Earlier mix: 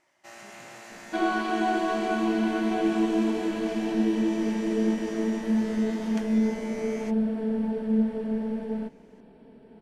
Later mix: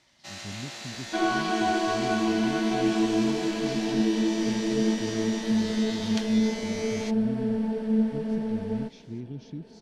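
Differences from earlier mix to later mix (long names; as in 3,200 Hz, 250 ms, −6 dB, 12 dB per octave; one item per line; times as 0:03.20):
speech: unmuted
first sound: add parametric band 3,800 Hz +11.5 dB 0.78 octaves
master: add parametric band 5,400 Hz +6.5 dB 1.5 octaves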